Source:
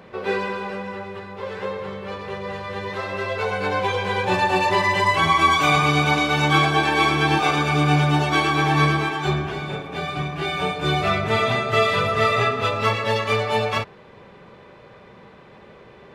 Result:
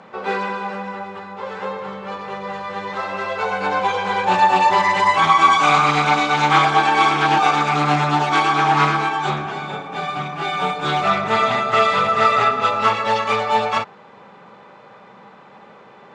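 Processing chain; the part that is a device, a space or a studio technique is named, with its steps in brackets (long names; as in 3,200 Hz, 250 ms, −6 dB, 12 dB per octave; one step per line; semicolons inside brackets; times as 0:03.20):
full-range speaker at full volume (highs frequency-modulated by the lows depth 0.2 ms; loudspeaker in its box 180–8,800 Hz, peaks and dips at 200 Hz +4 dB, 370 Hz −4 dB, 840 Hz +9 dB, 1,300 Hz +7 dB, 7,000 Hz +4 dB)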